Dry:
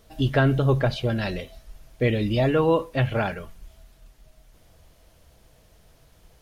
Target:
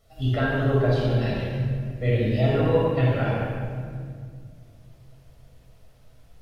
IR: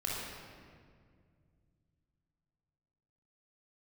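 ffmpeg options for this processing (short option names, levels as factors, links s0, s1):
-filter_complex "[0:a]flanger=delay=7.1:depth=1.6:regen=54:speed=1.6:shape=triangular[s0];[1:a]atrim=start_sample=2205[s1];[s0][s1]afir=irnorm=-1:irlink=0,volume=0.75"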